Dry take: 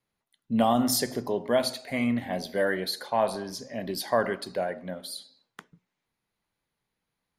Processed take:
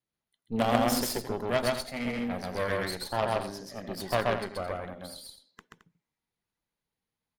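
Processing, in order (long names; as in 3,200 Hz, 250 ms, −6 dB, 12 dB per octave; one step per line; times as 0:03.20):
spectral magnitudes quantised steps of 15 dB
harmonic generator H 3 −12 dB, 5 −30 dB, 6 −21 dB, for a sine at −12 dBFS
loudspeakers that aren't time-aligned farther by 45 metres −1 dB, 75 metres −11 dB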